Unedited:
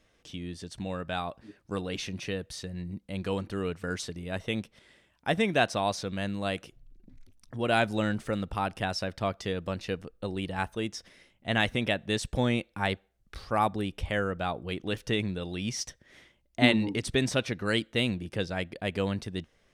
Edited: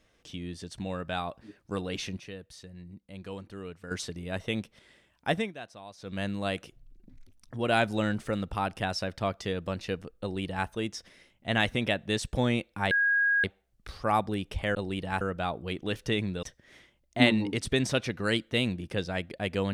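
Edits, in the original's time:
2.17–3.91 s: gain -9 dB
5.32–6.19 s: dip -18 dB, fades 0.21 s
10.21–10.67 s: copy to 14.22 s
12.91 s: add tone 1.64 kHz -21.5 dBFS 0.53 s
15.44–15.85 s: delete

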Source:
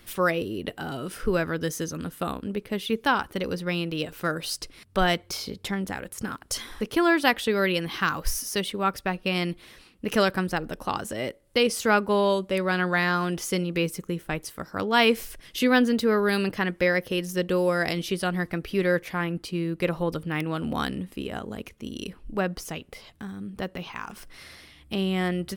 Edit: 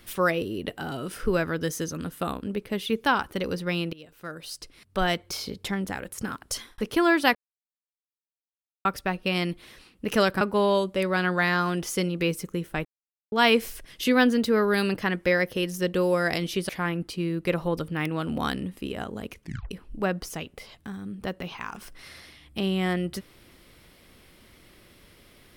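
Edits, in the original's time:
3.93–5.46 s: fade in linear, from -21 dB
6.49–6.78 s: fade out
7.35–8.85 s: mute
10.41–11.96 s: delete
14.40–14.87 s: mute
18.24–19.04 s: delete
21.76 s: tape stop 0.30 s

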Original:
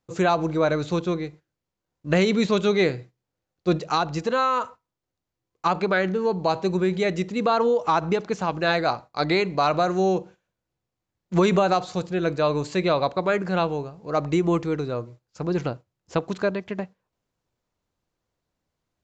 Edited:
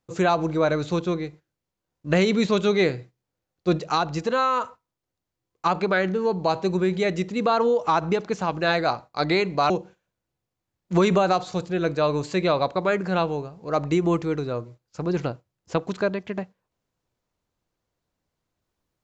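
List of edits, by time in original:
9.70–10.11 s: delete

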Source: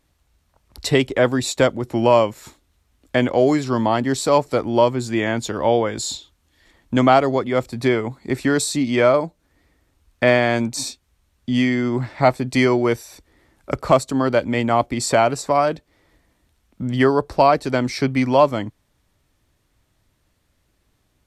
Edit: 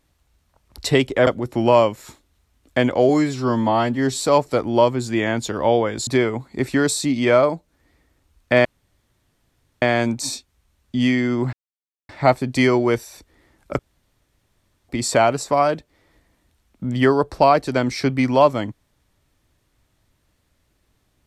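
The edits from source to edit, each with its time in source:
1.27–1.65 s: delete
3.47–4.23 s: stretch 1.5×
6.07–7.78 s: delete
10.36 s: insert room tone 1.17 s
12.07 s: insert silence 0.56 s
13.77–14.87 s: room tone

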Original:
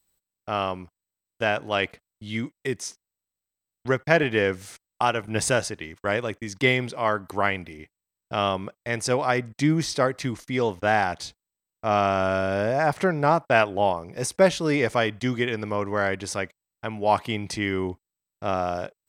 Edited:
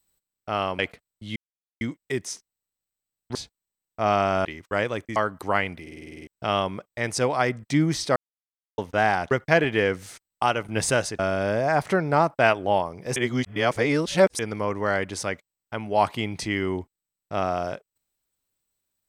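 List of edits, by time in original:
0.79–1.79 s: delete
2.36 s: insert silence 0.45 s
3.90–5.78 s: swap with 11.20–12.30 s
6.49–7.05 s: delete
7.71 s: stutter in place 0.05 s, 9 plays
10.05–10.67 s: mute
14.27–15.50 s: reverse

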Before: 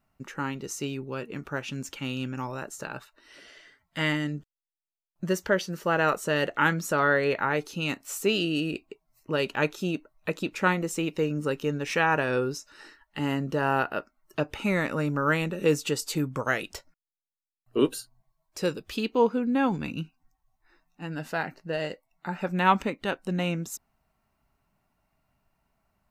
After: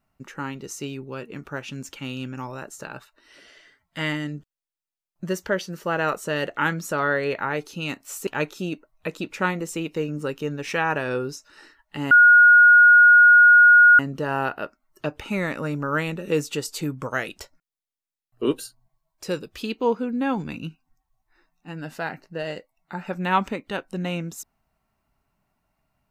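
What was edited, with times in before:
8.27–9.49 s: delete
13.33 s: add tone 1.44 kHz -8.5 dBFS 1.88 s

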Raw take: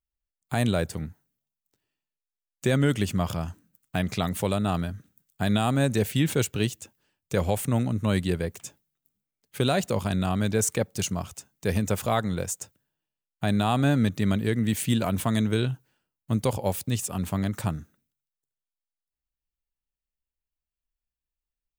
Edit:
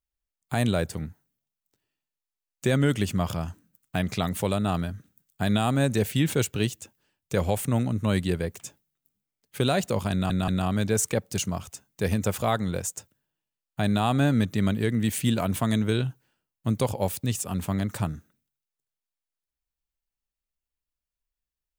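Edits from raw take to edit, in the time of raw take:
10.12 s: stutter 0.18 s, 3 plays

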